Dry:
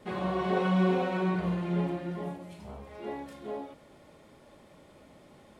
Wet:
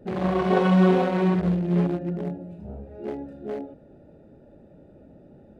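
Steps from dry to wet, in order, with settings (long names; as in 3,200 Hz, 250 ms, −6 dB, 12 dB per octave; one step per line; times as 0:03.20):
adaptive Wiener filter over 41 samples
level +8 dB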